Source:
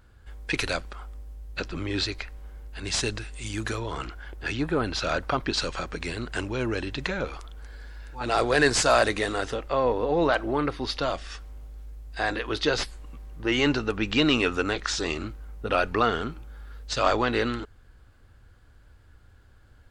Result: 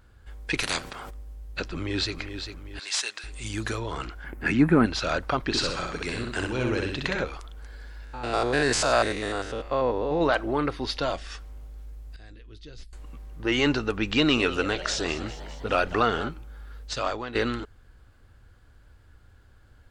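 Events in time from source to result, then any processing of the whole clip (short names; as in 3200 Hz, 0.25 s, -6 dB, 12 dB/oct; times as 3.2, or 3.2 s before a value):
0.62–1.09 spectral limiter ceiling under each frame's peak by 22 dB
1.64–2.14 echo throw 0.4 s, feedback 45%, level -8.5 dB
2.79–3.24 HPF 1000 Hz
4.24–4.86 EQ curve 100 Hz 0 dB, 210 Hz +15 dB, 470 Hz +1 dB, 780 Hz +3 dB, 1300 Hz +4 dB, 2200 Hz +7 dB, 3400 Hz -7 dB, 5900 Hz -4 dB, 13000 Hz +7 dB
5.45–7.24 feedback echo 64 ms, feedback 38%, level -3.5 dB
8.04–10.21 stepped spectrum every 0.1 s
10.81–11.26 notch 1200 Hz, Q 11
12.16–12.93 passive tone stack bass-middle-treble 10-0-1
14.11–16.29 frequency-shifting echo 0.202 s, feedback 64%, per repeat +100 Hz, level -15.5 dB
16.84–17.35 fade out quadratic, to -11 dB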